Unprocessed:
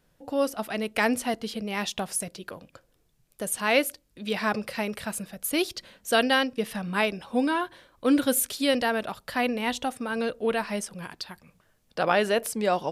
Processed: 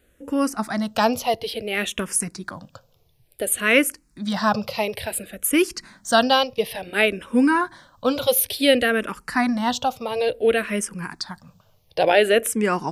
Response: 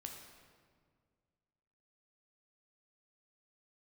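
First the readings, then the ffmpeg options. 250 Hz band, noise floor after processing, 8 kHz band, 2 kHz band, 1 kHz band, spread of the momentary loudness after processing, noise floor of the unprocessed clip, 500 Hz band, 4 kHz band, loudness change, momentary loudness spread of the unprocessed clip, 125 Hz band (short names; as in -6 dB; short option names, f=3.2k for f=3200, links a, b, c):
+5.0 dB, -61 dBFS, +6.0 dB, +5.0 dB, +5.5 dB, 12 LU, -67 dBFS, +6.0 dB, +5.5 dB, +5.5 dB, 13 LU, +4.5 dB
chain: -filter_complex "[0:a]equalizer=f=91:t=o:w=0.77:g=5,asplit=2[a][b];[b]afreqshift=-0.57[c];[a][c]amix=inputs=2:normalize=1,volume=8.5dB"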